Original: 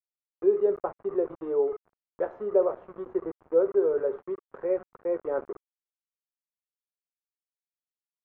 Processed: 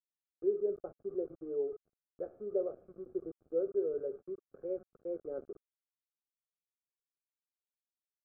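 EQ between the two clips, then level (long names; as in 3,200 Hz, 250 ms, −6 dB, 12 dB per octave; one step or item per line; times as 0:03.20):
moving average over 46 samples
−6.5 dB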